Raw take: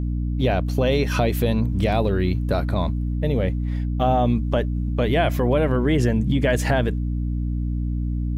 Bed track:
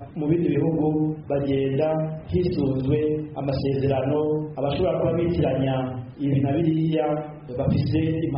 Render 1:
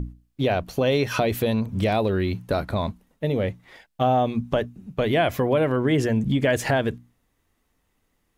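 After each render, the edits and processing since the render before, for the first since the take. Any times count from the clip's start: notches 60/120/180/240/300 Hz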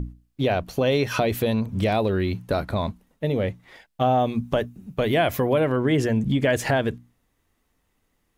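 4.2–5.6 high shelf 10000 Hz +9.5 dB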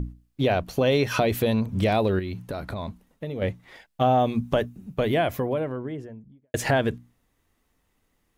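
2.19–3.42 compressor 4:1, threshold -29 dBFS; 4.64–6.54 studio fade out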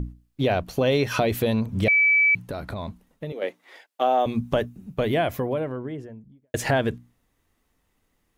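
1.88–2.35 bleep 2300 Hz -15 dBFS; 3.32–4.26 HPF 320 Hz 24 dB/oct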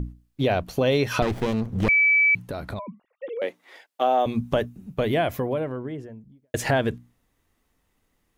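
1.22–1.89 running maximum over 33 samples; 2.79–3.42 sine-wave speech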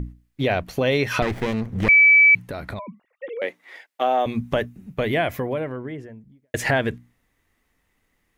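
bell 2000 Hz +7.5 dB 0.7 oct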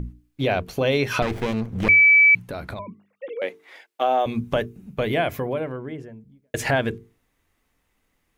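bell 1900 Hz -6.5 dB 0.2 oct; notches 50/100/150/200/250/300/350/400/450 Hz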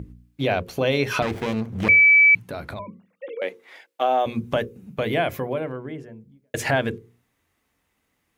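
HPF 64 Hz; notches 60/120/180/240/300/360/420/480/540 Hz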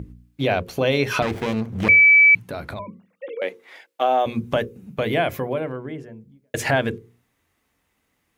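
gain +1.5 dB

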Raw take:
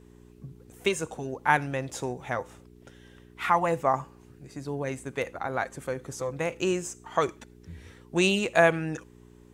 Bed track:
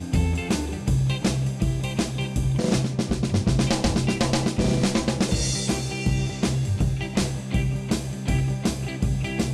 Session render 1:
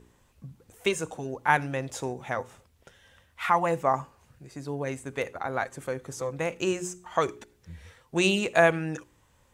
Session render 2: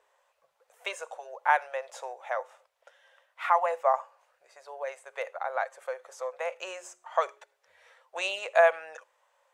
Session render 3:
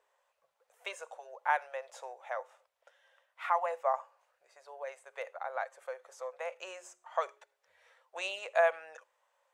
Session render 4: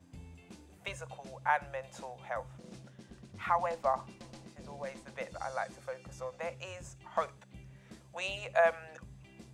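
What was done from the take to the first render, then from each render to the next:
de-hum 60 Hz, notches 7
elliptic high-pass 560 Hz, stop band 50 dB; tilt -3 dB/oct
gain -6 dB
add bed track -28.5 dB

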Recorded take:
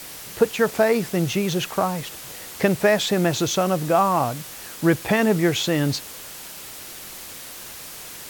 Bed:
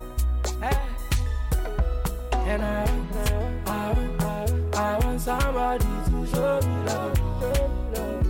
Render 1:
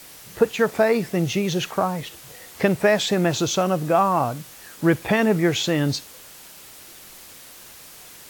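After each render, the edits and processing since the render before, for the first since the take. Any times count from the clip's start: noise print and reduce 6 dB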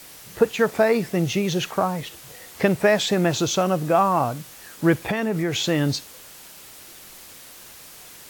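4.98–5.62 compressor 4:1, threshold -20 dBFS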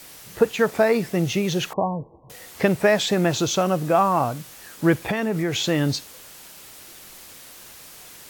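1.73–2.3 Chebyshev low-pass 1100 Hz, order 10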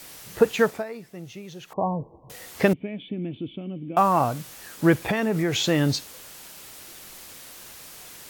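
0.63–1.88 dip -17 dB, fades 0.21 s; 2.73–3.97 vocal tract filter i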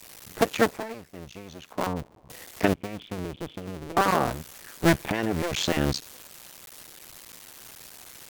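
cycle switcher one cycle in 2, muted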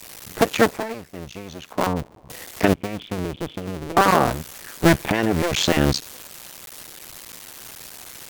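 gain +6.5 dB; limiter -3 dBFS, peak gain reduction 3 dB

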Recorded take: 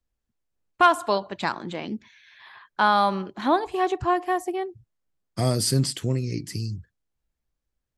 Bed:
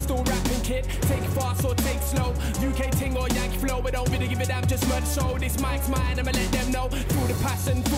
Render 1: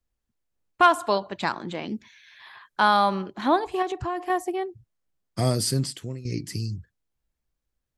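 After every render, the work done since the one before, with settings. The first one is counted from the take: 1.89–2.97 bell 11000 Hz +6.5 dB 1.8 oct; 3.82–4.3 compressor 4:1, threshold -25 dBFS; 5.49–6.25 fade out, to -14 dB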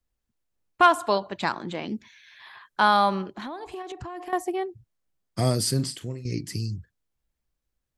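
3.24–4.33 compressor 12:1, threshold -32 dBFS; 5.75–6.26 doubler 41 ms -11.5 dB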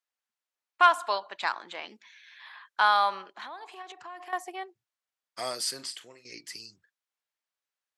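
HPF 910 Hz 12 dB/oct; high shelf 8000 Hz -10 dB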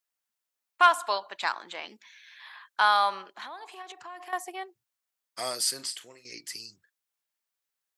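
high shelf 7600 Hz +9.5 dB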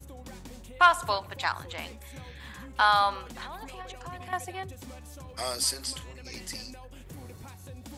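add bed -20.5 dB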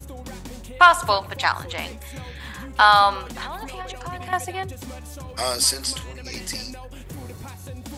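gain +8 dB; limiter -1 dBFS, peak gain reduction 2 dB

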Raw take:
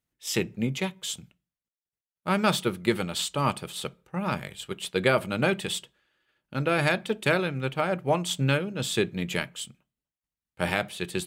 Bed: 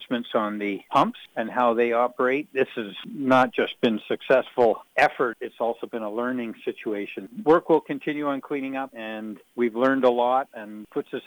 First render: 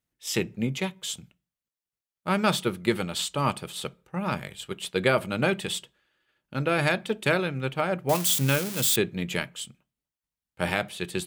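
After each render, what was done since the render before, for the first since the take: 8.09–8.96 switching spikes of -18 dBFS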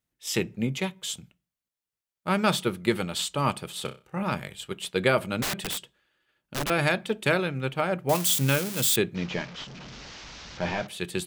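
3.82–4.23 flutter echo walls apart 5.3 m, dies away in 0.28 s; 5.42–6.7 wrapped overs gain 24 dB; 9.15–10.87 delta modulation 32 kbps, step -36.5 dBFS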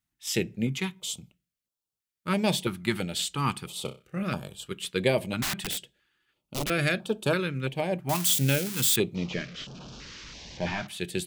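stepped notch 3 Hz 490–2000 Hz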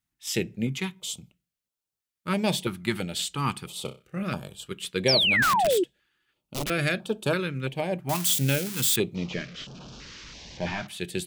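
5.08–5.84 painted sound fall 330–5800 Hz -22 dBFS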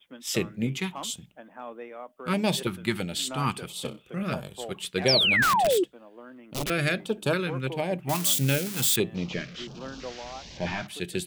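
add bed -19.5 dB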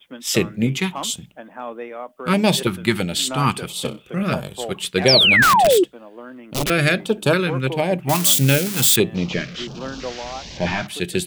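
gain +8.5 dB; limiter -2 dBFS, peak gain reduction 1 dB

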